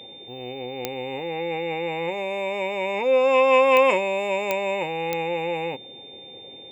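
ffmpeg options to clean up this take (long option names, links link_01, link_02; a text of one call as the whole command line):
ffmpeg -i in.wav -af "adeclick=threshold=4,bandreject=frequency=3600:width=30" out.wav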